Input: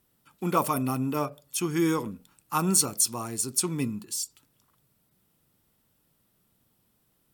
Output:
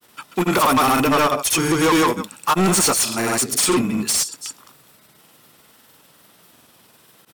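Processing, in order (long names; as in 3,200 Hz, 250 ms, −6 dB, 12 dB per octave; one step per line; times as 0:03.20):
single-tap delay 185 ms −19.5 dB
granular cloud, pitch spread up and down by 0 semitones
mid-hump overdrive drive 32 dB, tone 6,600 Hz, clips at −8 dBFS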